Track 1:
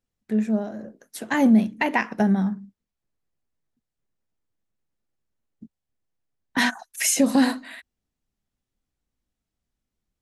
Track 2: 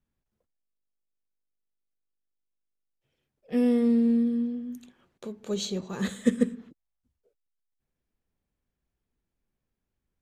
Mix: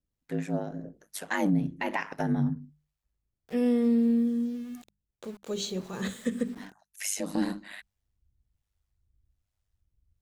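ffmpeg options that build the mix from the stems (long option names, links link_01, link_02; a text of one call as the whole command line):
ffmpeg -i stem1.wav -i stem2.wav -filter_complex "[0:a]acrossover=split=460[link_01][link_02];[link_01]aeval=exprs='val(0)*(1-0.7/2+0.7/2*cos(2*PI*1.2*n/s))':channel_layout=same[link_03];[link_02]aeval=exprs='val(0)*(1-0.7/2-0.7/2*cos(2*PI*1.2*n/s))':channel_layout=same[link_04];[link_03][link_04]amix=inputs=2:normalize=0,asubboost=boost=5:cutoff=92,aeval=exprs='val(0)*sin(2*PI*50*n/s)':channel_layout=same,volume=2.5dB[link_05];[1:a]bandreject=frequency=50:width_type=h:width=6,bandreject=frequency=100:width_type=h:width=6,bandreject=frequency=150:width_type=h:width=6,bandreject=frequency=200:width_type=h:width=6,bandreject=frequency=250:width_type=h:width=6,bandreject=frequency=300:width_type=h:width=6,bandreject=frequency=350:width_type=h:width=6,bandreject=frequency=400:width_type=h:width=6,aeval=exprs='val(0)*gte(abs(val(0)),0.00473)':channel_layout=same,volume=-1dB,asplit=2[link_06][link_07];[link_07]apad=whole_len=450368[link_08];[link_05][link_08]sidechaincompress=threshold=-44dB:ratio=4:attack=9.5:release=717[link_09];[link_09][link_06]amix=inputs=2:normalize=0,bandreject=frequency=50:width_type=h:width=6,bandreject=frequency=100:width_type=h:width=6,bandreject=frequency=150:width_type=h:width=6,bandreject=frequency=200:width_type=h:width=6,alimiter=limit=-17dB:level=0:latency=1:release=103" out.wav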